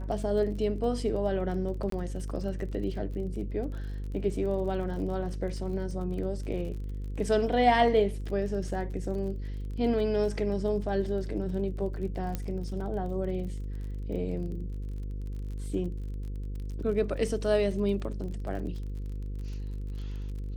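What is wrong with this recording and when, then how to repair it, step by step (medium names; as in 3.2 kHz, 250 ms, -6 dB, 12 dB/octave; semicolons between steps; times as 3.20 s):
buzz 50 Hz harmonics 10 -35 dBFS
crackle 33 per s -39 dBFS
1.90–1.92 s: dropout 23 ms
12.35 s: pop -18 dBFS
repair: de-click; de-hum 50 Hz, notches 10; interpolate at 1.90 s, 23 ms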